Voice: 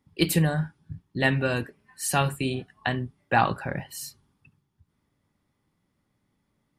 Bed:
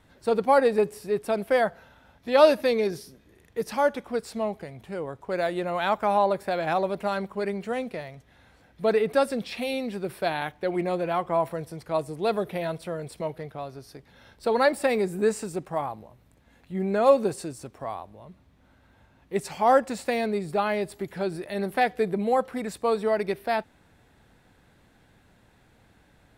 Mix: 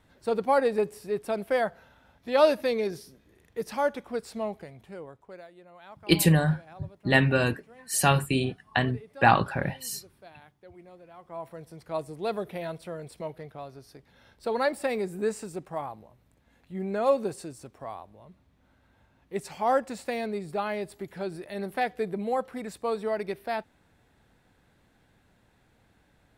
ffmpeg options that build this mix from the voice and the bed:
-filter_complex "[0:a]adelay=5900,volume=1.26[s0];[1:a]volume=5.62,afade=t=out:st=4.52:d=0.95:silence=0.1,afade=t=in:st=11.17:d=0.81:silence=0.11885[s1];[s0][s1]amix=inputs=2:normalize=0"

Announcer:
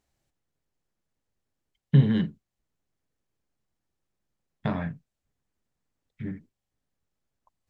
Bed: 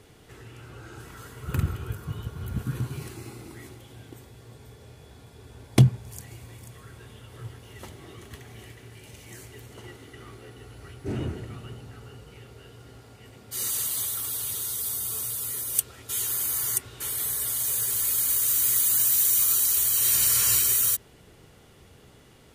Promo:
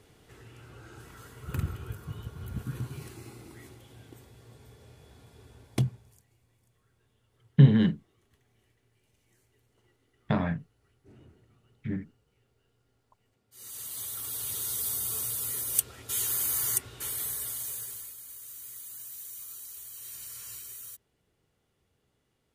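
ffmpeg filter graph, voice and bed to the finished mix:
-filter_complex "[0:a]adelay=5650,volume=1.19[s0];[1:a]volume=7.94,afade=t=out:st=5.4:d=0.83:silence=0.105925,afade=t=in:st=13.51:d=1.24:silence=0.0668344,afade=t=out:st=16.74:d=1.41:silence=0.1[s1];[s0][s1]amix=inputs=2:normalize=0"

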